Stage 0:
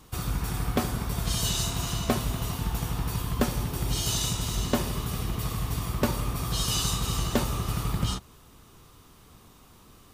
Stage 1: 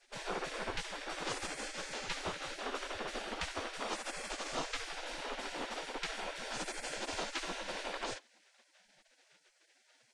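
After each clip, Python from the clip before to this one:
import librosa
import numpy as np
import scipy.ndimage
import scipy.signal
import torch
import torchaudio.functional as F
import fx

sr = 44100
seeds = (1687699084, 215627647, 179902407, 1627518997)

y = scipy.signal.sosfilt(scipy.signal.bessel(8, 5900.0, 'lowpass', norm='mag', fs=sr, output='sos'), x)
y = fx.spec_gate(y, sr, threshold_db=-25, keep='weak')
y = fx.tilt_eq(y, sr, slope=-3.5)
y = F.gain(torch.from_numpy(y), 6.0).numpy()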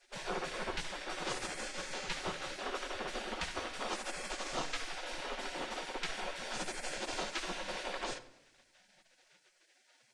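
y = fx.room_shoebox(x, sr, seeds[0], volume_m3=3900.0, walls='furnished', distance_m=0.99)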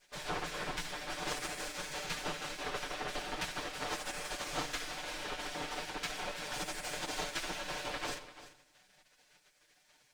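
y = fx.lower_of_two(x, sr, delay_ms=6.7)
y = y + 10.0 ** (-15.0 / 20.0) * np.pad(y, (int(343 * sr / 1000.0), 0))[:len(y)]
y = F.gain(torch.from_numpy(y), 2.0).numpy()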